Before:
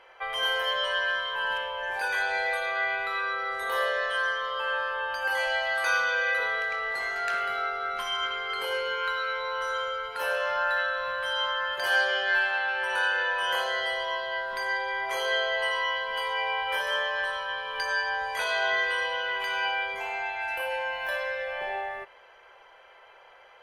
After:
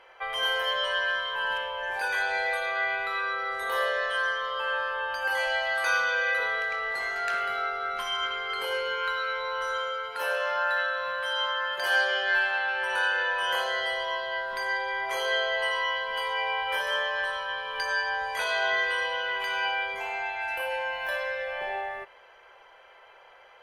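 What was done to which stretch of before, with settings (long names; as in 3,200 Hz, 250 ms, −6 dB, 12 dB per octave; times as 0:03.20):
0:09.78–0:12.24: low-shelf EQ 97 Hz −11 dB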